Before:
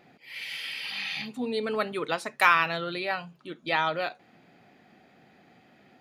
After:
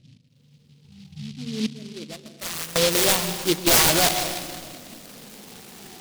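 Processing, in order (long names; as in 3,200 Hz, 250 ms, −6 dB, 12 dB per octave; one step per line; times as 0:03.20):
rippled gain that drifts along the octave scale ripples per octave 0.9, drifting −0.42 Hz, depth 12 dB
mains-hum notches 60/120/180/240 Hz
0:01.66–0:02.76: guitar amp tone stack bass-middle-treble 10-0-1
0:03.34–0:03.77: comb filter 6 ms, depth 71%
dynamic equaliser 2,300 Hz, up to −6 dB, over −46 dBFS, Q 2
low-pass filter sweep 120 Hz → 3,100 Hz, 0:01.46–0:02.67
wrap-around overflow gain 18 dB
convolution reverb RT60 1.9 s, pre-delay 119 ms, DRR 10.5 dB
boost into a limiter +19 dB
short delay modulated by noise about 3,600 Hz, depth 0.2 ms
level −7.5 dB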